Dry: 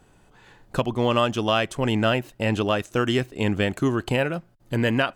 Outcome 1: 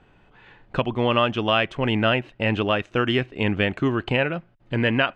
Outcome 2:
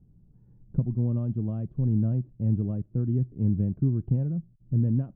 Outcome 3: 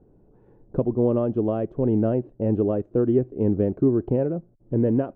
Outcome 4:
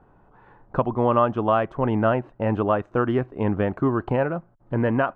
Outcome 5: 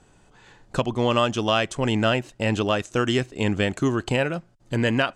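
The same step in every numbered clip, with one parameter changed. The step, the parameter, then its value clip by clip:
synth low-pass, frequency: 2700, 160, 420, 1100, 7500 Hz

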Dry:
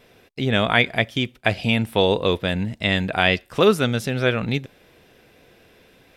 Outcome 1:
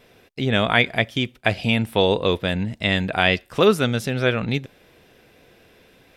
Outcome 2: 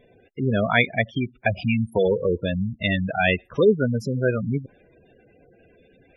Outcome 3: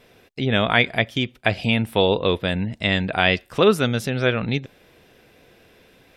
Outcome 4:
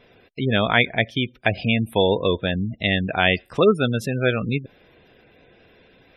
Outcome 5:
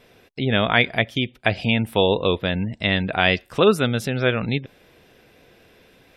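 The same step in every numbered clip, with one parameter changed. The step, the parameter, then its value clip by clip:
spectral gate, under each frame's peak: -60, -10, -45, -20, -35 dB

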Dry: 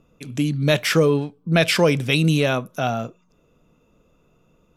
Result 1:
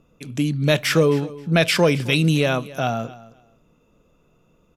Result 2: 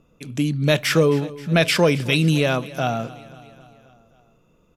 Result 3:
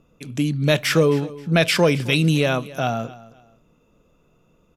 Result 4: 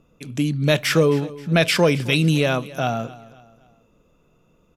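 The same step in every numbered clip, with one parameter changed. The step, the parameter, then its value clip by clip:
feedback echo, feedback: 18, 61, 27, 41%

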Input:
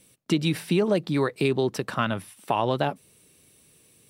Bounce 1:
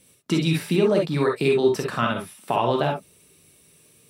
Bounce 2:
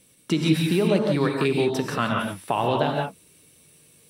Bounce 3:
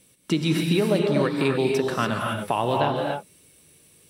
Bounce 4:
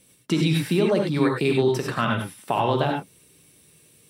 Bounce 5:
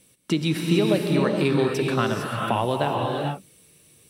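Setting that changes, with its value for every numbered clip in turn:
non-linear reverb, gate: 80, 200, 310, 120, 480 ms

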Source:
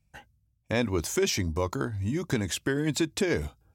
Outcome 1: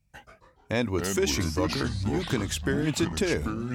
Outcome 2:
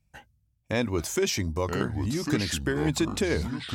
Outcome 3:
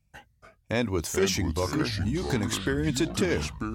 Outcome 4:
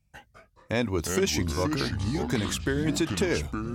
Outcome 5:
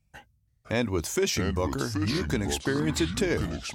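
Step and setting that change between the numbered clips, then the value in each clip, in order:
echoes that change speed, time: 95, 794, 250, 171, 475 ms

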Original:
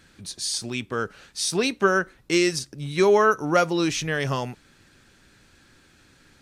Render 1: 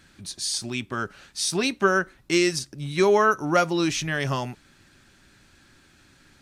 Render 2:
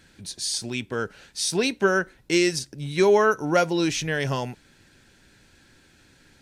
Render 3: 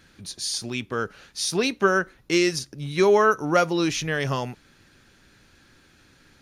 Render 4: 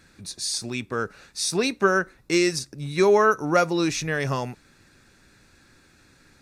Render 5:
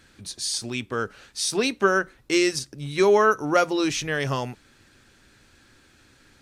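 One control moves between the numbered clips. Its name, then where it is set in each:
notch, frequency: 470, 1200, 8000, 3100, 170 Hz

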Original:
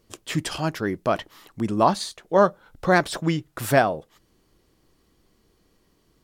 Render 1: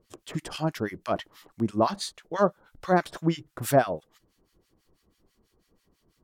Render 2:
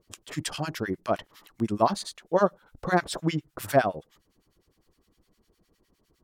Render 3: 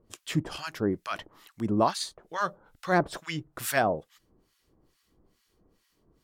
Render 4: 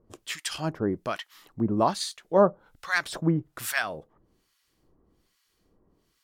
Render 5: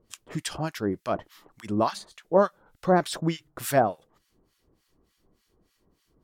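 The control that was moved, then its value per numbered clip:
harmonic tremolo, rate: 6.1, 9.8, 2.3, 1.2, 3.4 Hz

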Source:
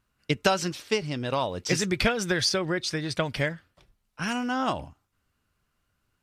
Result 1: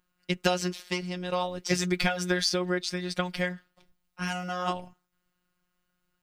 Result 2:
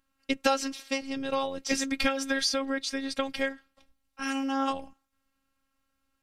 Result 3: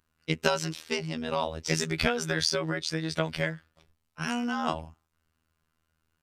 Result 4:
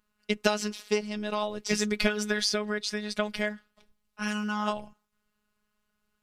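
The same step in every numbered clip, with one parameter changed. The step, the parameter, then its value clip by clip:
robotiser, frequency: 180, 270, 80, 210 Hz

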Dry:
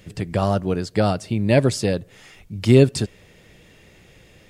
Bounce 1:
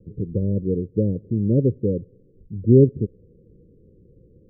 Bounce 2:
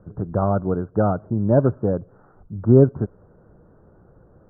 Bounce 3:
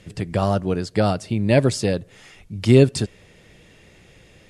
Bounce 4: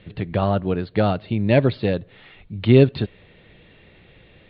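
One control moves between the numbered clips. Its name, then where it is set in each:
steep low-pass, frequency: 520, 1500, 12000, 4200 Hz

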